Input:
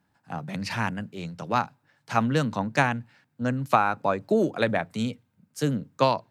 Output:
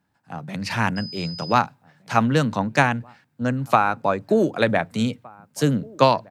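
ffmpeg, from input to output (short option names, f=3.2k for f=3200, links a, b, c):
-filter_complex "[0:a]asplit=2[a][b];[b]adelay=1516,volume=-26dB,highshelf=f=4k:g=-34.1[c];[a][c]amix=inputs=2:normalize=0,dynaudnorm=f=300:g=5:m=11.5dB,asettb=1/sr,asplit=3[d][e][f];[d]atrim=end=0.964[g];[e]atrim=start=0.96:end=1.53,asetpts=PTS-STARTPTS,afade=t=in:d=0.004:c=qsin,afade=t=out:st=0.566:d=0.004:c=qsin,aeval=exprs='val(0)+0.0224*sin(2*PI*5000*n/s)':c=same[h];[f]atrim=start=1.526[i];[g][h]acrossfade=d=0.004:c1=hsin:c2=qsin[j];[j][i]acrossfade=d=0.004:c1=qsin:c2=hsin,volume=-1dB"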